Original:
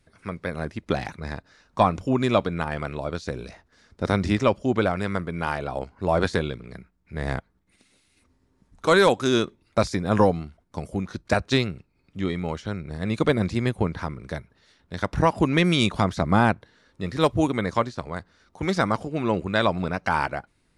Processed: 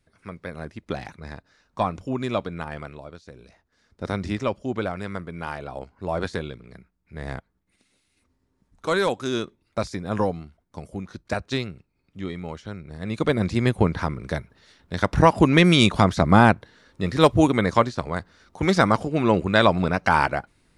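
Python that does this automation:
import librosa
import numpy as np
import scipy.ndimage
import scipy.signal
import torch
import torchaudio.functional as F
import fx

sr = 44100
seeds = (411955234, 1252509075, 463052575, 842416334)

y = fx.gain(x, sr, db=fx.line((2.78, -5.0), (3.24, -14.5), (4.04, -5.0), (12.92, -5.0), (13.76, 4.5)))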